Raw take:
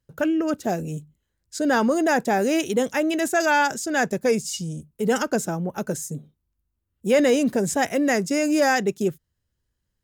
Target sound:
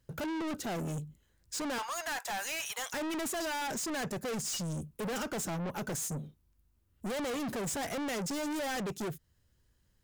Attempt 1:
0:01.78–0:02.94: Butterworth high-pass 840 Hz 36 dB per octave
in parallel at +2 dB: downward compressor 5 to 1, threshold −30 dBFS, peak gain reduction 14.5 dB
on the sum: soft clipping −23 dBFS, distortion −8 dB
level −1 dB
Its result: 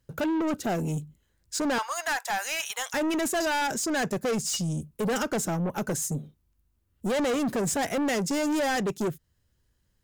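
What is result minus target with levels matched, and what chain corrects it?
soft clipping: distortion −4 dB
0:01.78–0:02.94: Butterworth high-pass 840 Hz 36 dB per octave
in parallel at +2 dB: downward compressor 5 to 1, threshold −30 dBFS, peak gain reduction 14.5 dB
on the sum: soft clipping −33 dBFS, distortion −3 dB
level −1 dB

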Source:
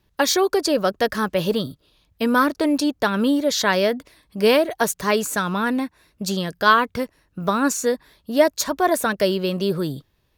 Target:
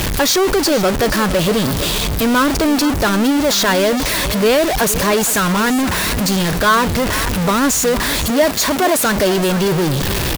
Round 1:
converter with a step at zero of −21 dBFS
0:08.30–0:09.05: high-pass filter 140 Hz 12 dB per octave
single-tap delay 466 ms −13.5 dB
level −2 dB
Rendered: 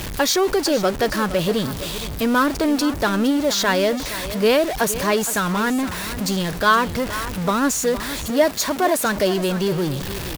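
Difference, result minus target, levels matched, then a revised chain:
converter with a step at zero: distortion −7 dB
converter with a step at zero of −10.5 dBFS
0:08.30–0:09.05: high-pass filter 140 Hz 12 dB per octave
single-tap delay 466 ms −13.5 dB
level −2 dB

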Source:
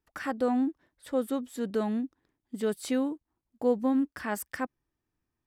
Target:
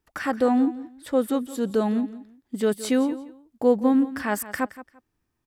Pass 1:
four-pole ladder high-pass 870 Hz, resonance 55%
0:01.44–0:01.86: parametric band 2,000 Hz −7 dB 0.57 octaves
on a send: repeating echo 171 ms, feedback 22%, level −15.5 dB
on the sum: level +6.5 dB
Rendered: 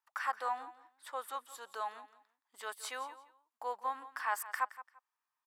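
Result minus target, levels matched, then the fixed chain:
1,000 Hz band +10.0 dB
0:01.44–0:01.86: parametric band 2,000 Hz −7 dB 0.57 octaves
on a send: repeating echo 171 ms, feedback 22%, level −15.5 dB
on the sum: level +6.5 dB

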